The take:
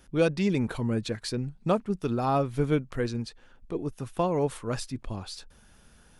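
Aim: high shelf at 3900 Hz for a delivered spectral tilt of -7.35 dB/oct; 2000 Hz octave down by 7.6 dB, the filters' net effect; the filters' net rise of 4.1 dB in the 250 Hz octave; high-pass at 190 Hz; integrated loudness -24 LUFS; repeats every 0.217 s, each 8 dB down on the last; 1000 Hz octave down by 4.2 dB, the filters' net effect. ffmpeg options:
-af "highpass=190,equalizer=f=250:t=o:g=7.5,equalizer=f=1k:t=o:g=-4.5,equalizer=f=2k:t=o:g=-8.5,highshelf=f=3.9k:g=-3,aecho=1:1:217|434|651|868|1085:0.398|0.159|0.0637|0.0255|0.0102,volume=3dB"

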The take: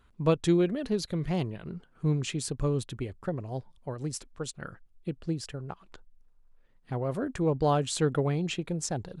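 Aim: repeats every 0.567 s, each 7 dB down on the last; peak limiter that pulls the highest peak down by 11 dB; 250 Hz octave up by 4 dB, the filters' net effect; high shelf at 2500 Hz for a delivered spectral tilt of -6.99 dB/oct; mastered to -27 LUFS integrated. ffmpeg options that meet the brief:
-af "equalizer=f=250:t=o:g=6.5,highshelf=f=2.5k:g=-3,alimiter=limit=-22dB:level=0:latency=1,aecho=1:1:567|1134|1701|2268|2835:0.447|0.201|0.0905|0.0407|0.0183,volume=5dB"

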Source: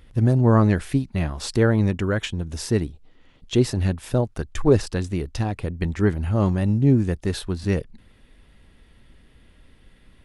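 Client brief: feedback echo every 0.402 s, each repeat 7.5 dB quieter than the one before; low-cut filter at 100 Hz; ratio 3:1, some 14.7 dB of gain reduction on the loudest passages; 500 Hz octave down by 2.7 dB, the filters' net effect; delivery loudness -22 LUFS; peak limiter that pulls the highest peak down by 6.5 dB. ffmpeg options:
-af "highpass=100,equalizer=f=500:t=o:g=-3.5,acompressor=threshold=-34dB:ratio=3,alimiter=level_in=1.5dB:limit=-24dB:level=0:latency=1,volume=-1.5dB,aecho=1:1:402|804|1206|1608|2010:0.422|0.177|0.0744|0.0312|0.0131,volume=14dB"

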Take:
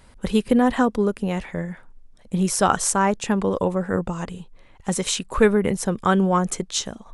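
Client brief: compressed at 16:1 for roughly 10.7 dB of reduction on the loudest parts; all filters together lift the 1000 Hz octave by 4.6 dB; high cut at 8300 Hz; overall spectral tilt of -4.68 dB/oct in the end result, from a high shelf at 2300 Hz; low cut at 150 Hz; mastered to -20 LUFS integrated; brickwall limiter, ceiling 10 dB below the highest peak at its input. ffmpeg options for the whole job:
-af "highpass=150,lowpass=8.3k,equalizer=f=1k:t=o:g=6.5,highshelf=f=2.3k:g=-3.5,acompressor=threshold=-19dB:ratio=16,volume=7.5dB,alimiter=limit=-7.5dB:level=0:latency=1"

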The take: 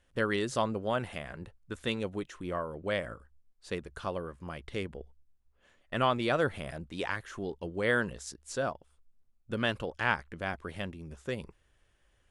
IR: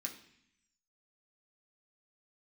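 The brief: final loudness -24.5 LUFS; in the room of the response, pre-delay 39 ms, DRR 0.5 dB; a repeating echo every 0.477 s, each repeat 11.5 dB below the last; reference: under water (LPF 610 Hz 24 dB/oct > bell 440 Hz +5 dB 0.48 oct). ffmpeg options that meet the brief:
-filter_complex "[0:a]aecho=1:1:477|954|1431:0.266|0.0718|0.0194,asplit=2[a][b];[1:a]atrim=start_sample=2205,adelay=39[c];[b][c]afir=irnorm=-1:irlink=0,volume=1dB[d];[a][d]amix=inputs=2:normalize=0,lowpass=f=610:w=0.5412,lowpass=f=610:w=1.3066,equalizer=f=440:t=o:w=0.48:g=5,volume=8.5dB"

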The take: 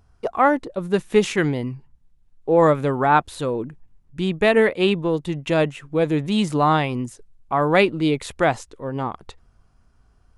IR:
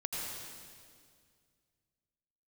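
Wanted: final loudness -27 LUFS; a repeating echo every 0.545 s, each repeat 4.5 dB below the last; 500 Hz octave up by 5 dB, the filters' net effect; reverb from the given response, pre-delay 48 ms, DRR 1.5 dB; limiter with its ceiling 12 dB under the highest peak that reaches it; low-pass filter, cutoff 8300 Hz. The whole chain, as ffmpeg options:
-filter_complex "[0:a]lowpass=8.3k,equalizer=f=500:t=o:g=6,alimiter=limit=-13dB:level=0:latency=1,aecho=1:1:545|1090|1635|2180|2725|3270|3815|4360|4905:0.596|0.357|0.214|0.129|0.0772|0.0463|0.0278|0.0167|0.01,asplit=2[a][b];[1:a]atrim=start_sample=2205,adelay=48[c];[b][c]afir=irnorm=-1:irlink=0,volume=-4.5dB[d];[a][d]amix=inputs=2:normalize=0,volume=-7.5dB"

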